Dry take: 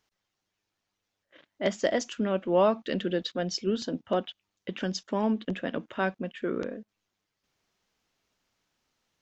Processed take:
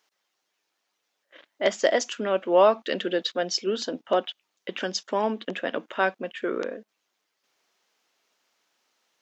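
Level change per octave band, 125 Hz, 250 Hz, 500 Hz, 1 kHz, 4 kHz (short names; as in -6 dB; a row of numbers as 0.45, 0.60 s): -7.5, -2.5, +4.5, +6.0, +6.0 dB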